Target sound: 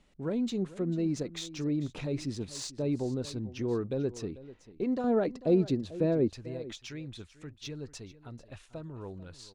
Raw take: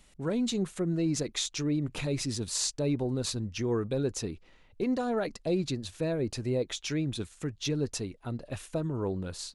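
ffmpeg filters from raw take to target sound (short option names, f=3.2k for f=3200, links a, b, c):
-af "asetnsamples=n=441:p=0,asendcmd='5.04 equalizer g 12;6.3 equalizer g -5',equalizer=f=300:w=0.42:g=5.5,adynamicsmooth=sensitivity=2.5:basefreq=6.2k,aecho=1:1:443:0.141,volume=-6.5dB"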